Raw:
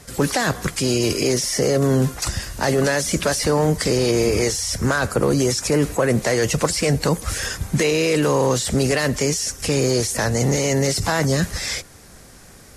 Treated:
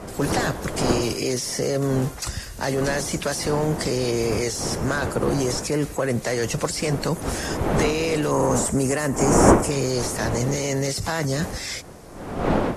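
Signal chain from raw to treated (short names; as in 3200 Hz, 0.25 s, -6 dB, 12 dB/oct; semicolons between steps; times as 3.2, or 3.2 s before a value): wind noise 580 Hz -23 dBFS; 8.31–9.71 graphic EQ 250/1000/4000/8000 Hz +4/+4/-12/+9 dB; gain -5 dB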